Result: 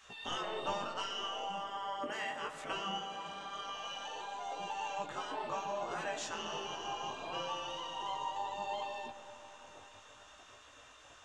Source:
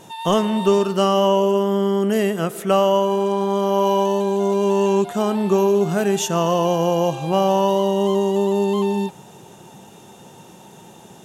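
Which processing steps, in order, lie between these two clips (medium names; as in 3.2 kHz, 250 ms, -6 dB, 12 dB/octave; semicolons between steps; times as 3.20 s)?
low-pass 7.5 kHz 24 dB/octave; treble shelf 3.4 kHz -10.5 dB; spectral gate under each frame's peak -15 dB weak; in parallel at +1 dB: compression, threshold -44 dBFS, peak gain reduction 17.5 dB; on the sum: chorus 0.66 Hz, delay 16.5 ms, depth 4.9 ms; on a send at -11 dB: reverberation RT60 4.6 s, pre-delay 25 ms; on the sum: trim -5 dB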